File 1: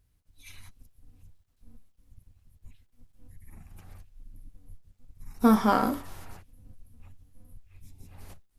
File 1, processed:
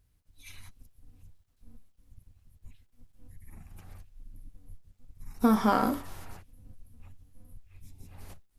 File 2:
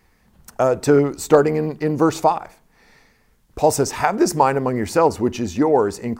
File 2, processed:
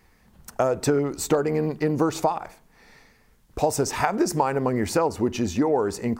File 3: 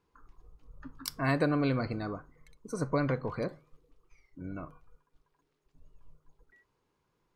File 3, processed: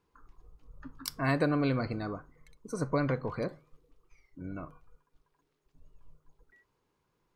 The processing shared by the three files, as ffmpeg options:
-af "acompressor=threshold=-18dB:ratio=6"

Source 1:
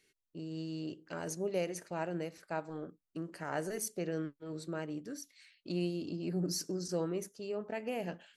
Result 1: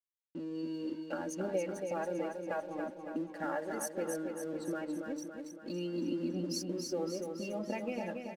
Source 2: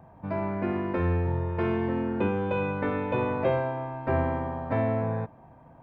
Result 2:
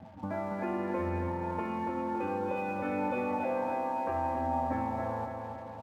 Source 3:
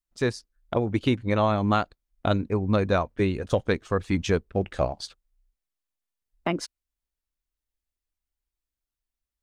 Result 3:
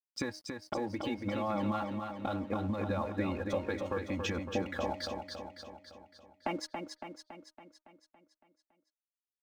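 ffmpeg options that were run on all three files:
-filter_complex "[0:a]highpass=f=75:w=0.5412,highpass=f=75:w=1.3066,bandreject=f=310.4:t=h:w=4,bandreject=f=620.8:t=h:w=4,bandreject=f=931.2:t=h:w=4,bandreject=f=1.2416k:t=h:w=4,bandreject=f=1.552k:t=h:w=4,bandreject=f=1.8624k:t=h:w=4,bandreject=f=2.1728k:t=h:w=4,afftdn=nr=13:nf=-45,bass=f=250:g=-3,treble=f=4k:g=-6,aecho=1:1:3.6:0.89,adynamicequalizer=threshold=0.00891:dfrequency=870:dqfactor=2.6:tfrequency=870:tqfactor=2.6:attack=5:release=100:ratio=0.375:range=2.5:mode=boostabove:tftype=bell,asplit=2[a][b];[b]acontrast=69,volume=0.5dB[c];[a][c]amix=inputs=2:normalize=0,alimiter=limit=-9dB:level=0:latency=1:release=60,acompressor=threshold=-37dB:ratio=3,aphaser=in_gain=1:out_gain=1:delay=2.7:decay=0.29:speed=0.65:type=triangular,aeval=exprs='sgn(val(0))*max(abs(val(0))-0.00141,0)':c=same,aecho=1:1:280|560|840|1120|1400|1680|1960|2240:0.531|0.303|0.172|0.0983|0.056|0.0319|0.0182|0.0104,volume=-1dB"

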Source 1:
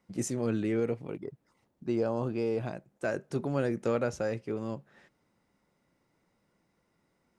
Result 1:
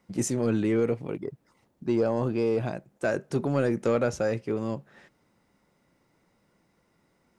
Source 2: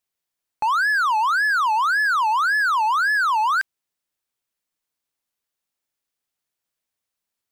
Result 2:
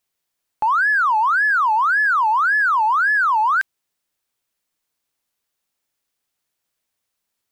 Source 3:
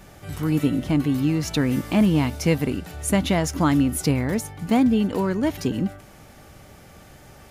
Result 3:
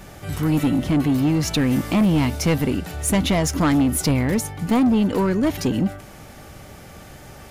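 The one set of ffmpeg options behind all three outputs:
-af "asoftclip=type=tanh:threshold=-18.5dB,volume=5.5dB"

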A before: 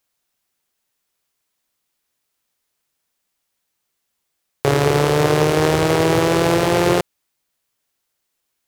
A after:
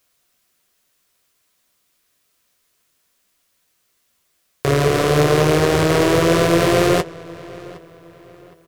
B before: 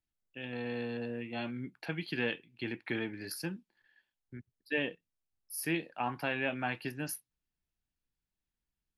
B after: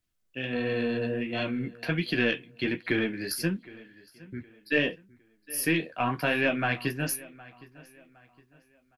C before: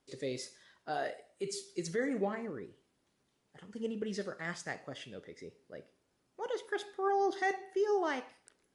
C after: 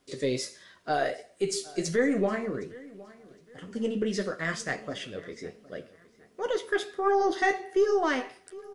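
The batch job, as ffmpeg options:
-filter_complex "[0:a]asplit=2[a][b];[b]acompressor=threshold=-30dB:ratio=6,volume=-1dB[c];[a][c]amix=inputs=2:normalize=0,alimiter=limit=-5.5dB:level=0:latency=1:release=314,aeval=exprs='0.531*(cos(1*acos(clip(val(0)/0.531,-1,1)))-cos(1*PI/2))+0.0106*(cos(8*acos(clip(val(0)/0.531,-1,1)))-cos(8*PI/2))':c=same,flanger=delay=9.9:depth=5.9:regen=-33:speed=1.4:shape=triangular,asuperstop=centerf=850:order=4:qfactor=6.7,asplit=2[d][e];[e]adelay=763,lowpass=f=4.3k:p=1,volume=-20.5dB,asplit=2[f][g];[g]adelay=763,lowpass=f=4.3k:p=1,volume=0.37,asplit=2[h][i];[i]adelay=763,lowpass=f=4.3k:p=1,volume=0.37[j];[f][h][j]amix=inputs=3:normalize=0[k];[d][k]amix=inputs=2:normalize=0,volume=7dB"

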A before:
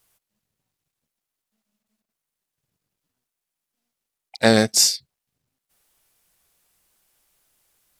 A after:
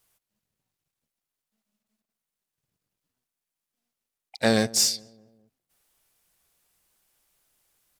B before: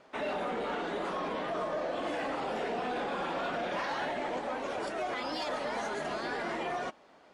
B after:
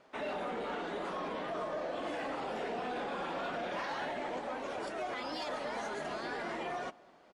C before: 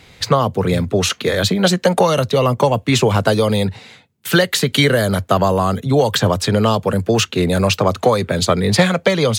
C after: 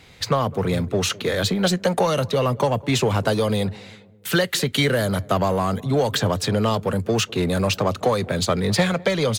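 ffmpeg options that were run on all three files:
-filter_complex "[0:a]asplit=2[a][b];[b]asoftclip=type=hard:threshold=-19dB,volume=-5dB[c];[a][c]amix=inputs=2:normalize=0,asplit=2[d][e];[e]adelay=206,lowpass=f=940:p=1,volume=-21dB,asplit=2[f][g];[g]adelay=206,lowpass=f=940:p=1,volume=0.51,asplit=2[h][i];[i]adelay=206,lowpass=f=940:p=1,volume=0.51,asplit=2[j][k];[k]adelay=206,lowpass=f=940:p=1,volume=0.51[l];[d][f][h][j][l]amix=inputs=5:normalize=0,volume=-7.5dB"

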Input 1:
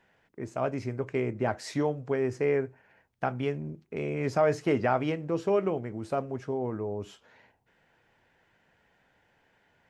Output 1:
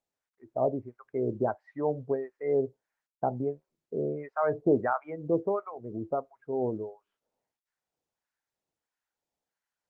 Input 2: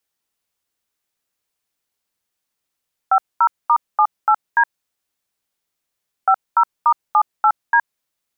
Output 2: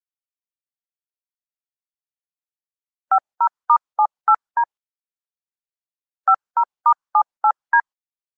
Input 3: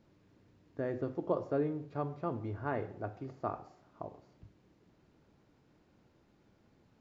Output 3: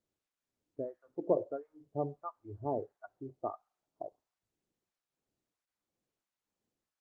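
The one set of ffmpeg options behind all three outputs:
-filter_complex "[0:a]lowpass=1.3k,lowshelf=f=310:g=-10.5,acrossover=split=910[a][b];[a]aeval=exprs='val(0)*(1-1/2+1/2*cos(2*PI*1.5*n/s))':c=same[c];[b]aeval=exprs='val(0)*(1-1/2-1/2*cos(2*PI*1.5*n/s))':c=same[d];[c][d]amix=inputs=2:normalize=0,afftdn=nr=24:nf=-41,volume=8dB" -ar 48000 -c:a libopus -b:a 32k

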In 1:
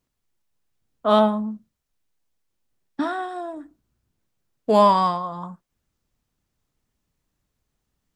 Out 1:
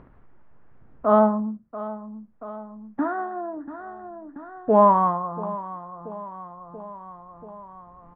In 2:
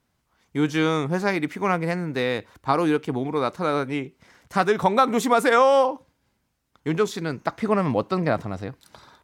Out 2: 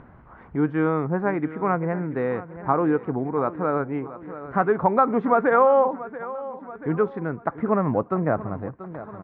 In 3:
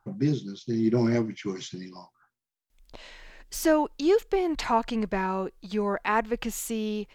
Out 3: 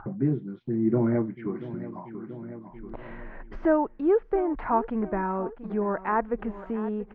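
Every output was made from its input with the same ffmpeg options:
-filter_complex "[0:a]lowpass=f=1.6k:w=0.5412,lowpass=f=1.6k:w=1.3066,asplit=2[a][b];[b]aecho=0:1:684|1368|2052|2736:0.158|0.065|0.0266|0.0109[c];[a][c]amix=inputs=2:normalize=0,acompressor=mode=upward:threshold=-29dB:ratio=2.5"

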